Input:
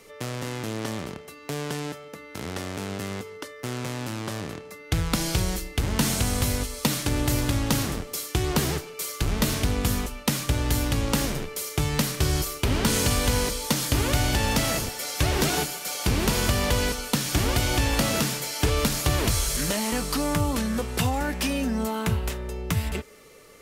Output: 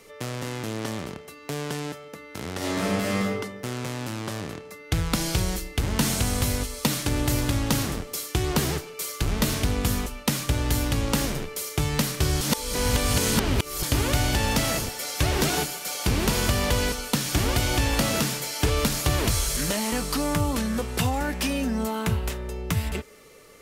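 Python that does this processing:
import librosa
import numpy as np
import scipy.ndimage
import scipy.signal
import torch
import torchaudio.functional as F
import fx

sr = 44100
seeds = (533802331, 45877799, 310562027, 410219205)

y = fx.reverb_throw(x, sr, start_s=2.57, length_s=0.8, rt60_s=1.0, drr_db=-6.5)
y = fx.edit(y, sr, fx.reverse_span(start_s=12.41, length_s=1.42), tone=tone)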